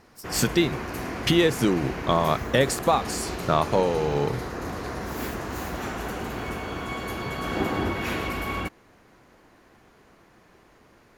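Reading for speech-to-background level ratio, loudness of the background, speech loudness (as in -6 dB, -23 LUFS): 7.0 dB, -31.5 LUFS, -24.5 LUFS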